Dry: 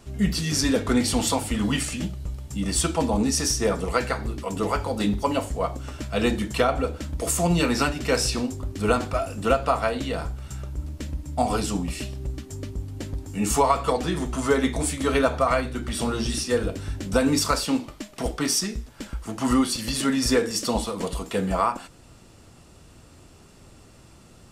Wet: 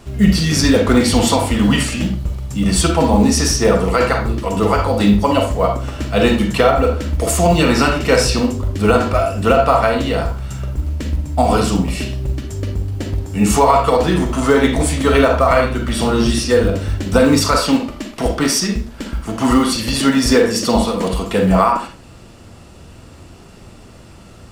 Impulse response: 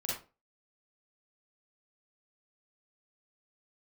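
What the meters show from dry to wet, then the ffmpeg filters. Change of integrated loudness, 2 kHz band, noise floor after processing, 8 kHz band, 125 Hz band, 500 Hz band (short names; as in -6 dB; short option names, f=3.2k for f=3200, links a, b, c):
+9.5 dB, +9.0 dB, -40 dBFS, +5.5 dB, +11.0 dB, +10.0 dB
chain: -filter_complex "[0:a]acrusher=bits=8:mode=log:mix=0:aa=0.000001,asplit=2[a][b];[1:a]atrim=start_sample=2205,lowpass=4.9k[c];[b][c]afir=irnorm=-1:irlink=0,volume=-3dB[d];[a][d]amix=inputs=2:normalize=0,alimiter=level_in=6.5dB:limit=-1dB:release=50:level=0:latency=1,volume=-1dB"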